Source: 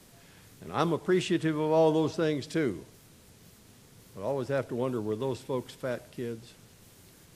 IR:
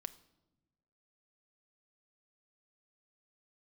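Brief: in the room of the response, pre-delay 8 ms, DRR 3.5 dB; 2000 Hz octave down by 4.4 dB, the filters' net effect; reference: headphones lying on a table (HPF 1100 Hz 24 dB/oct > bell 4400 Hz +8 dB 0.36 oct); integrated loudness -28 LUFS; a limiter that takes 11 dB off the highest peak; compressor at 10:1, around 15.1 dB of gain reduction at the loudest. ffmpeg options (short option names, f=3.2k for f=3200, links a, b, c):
-filter_complex "[0:a]equalizer=f=2k:t=o:g=-6,acompressor=threshold=-35dB:ratio=10,alimiter=level_in=10.5dB:limit=-24dB:level=0:latency=1,volume=-10.5dB,asplit=2[a][b];[1:a]atrim=start_sample=2205,adelay=8[c];[b][c]afir=irnorm=-1:irlink=0,volume=0dB[d];[a][d]amix=inputs=2:normalize=0,highpass=f=1.1k:w=0.5412,highpass=f=1.1k:w=1.3066,equalizer=f=4.4k:t=o:w=0.36:g=8,volume=23.5dB"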